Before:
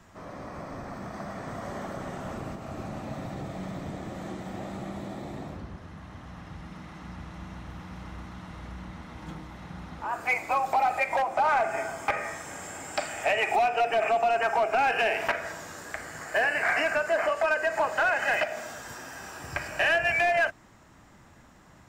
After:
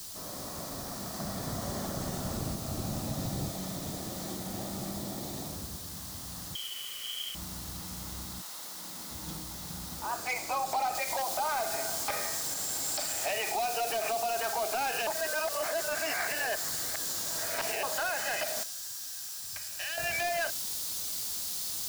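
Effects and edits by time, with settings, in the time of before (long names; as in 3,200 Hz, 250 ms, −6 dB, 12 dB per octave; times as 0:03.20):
0:01.19–0:03.49: low-shelf EQ 210 Hz +8.5 dB
0:04.36–0:05.24: bass and treble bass +2 dB, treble −6 dB
0:06.55–0:07.35: voice inversion scrambler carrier 3,200 Hz
0:08.41–0:09.09: high-pass filter 830 Hz → 190 Hz
0:10.95: noise floor change −51 dB −43 dB
0:15.07–0:17.83: reverse
0:18.63–0:19.98: guitar amp tone stack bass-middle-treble 5-5-5
whole clip: high shelf with overshoot 3,200 Hz +10 dB, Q 1.5; brickwall limiter −20.5 dBFS; level −2.5 dB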